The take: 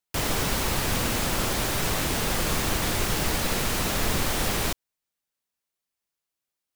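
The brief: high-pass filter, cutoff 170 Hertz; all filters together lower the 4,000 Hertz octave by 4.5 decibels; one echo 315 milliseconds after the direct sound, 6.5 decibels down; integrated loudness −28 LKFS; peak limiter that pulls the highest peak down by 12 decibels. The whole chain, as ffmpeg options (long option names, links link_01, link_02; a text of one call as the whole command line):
ffmpeg -i in.wav -af "highpass=170,equalizer=frequency=4000:width_type=o:gain=-6,alimiter=level_in=3dB:limit=-24dB:level=0:latency=1,volume=-3dB,aecho=1:1:315:0.473,volume=6dB" out.wav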